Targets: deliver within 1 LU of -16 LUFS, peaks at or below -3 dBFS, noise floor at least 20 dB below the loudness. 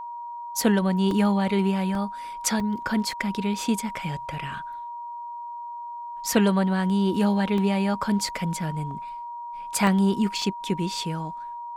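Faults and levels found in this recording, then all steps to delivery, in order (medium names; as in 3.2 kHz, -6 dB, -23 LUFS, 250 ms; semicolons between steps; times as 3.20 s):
dropouts 8; longest dropout 1.9 ms; steady tone 950 Hz; tone level -33 dBFS; loudness -25.0 LUFS; peak level -9.5 dBFS; loudness target -16.0 LUFS
-> interpolate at 1.11/1.95/2.60/3.12/7.58/8.91/9.87/10.42 s, 1.9 ms; band-stop 950 Hz, Q 30; trim +9 dB; peak limiter -3 dBFS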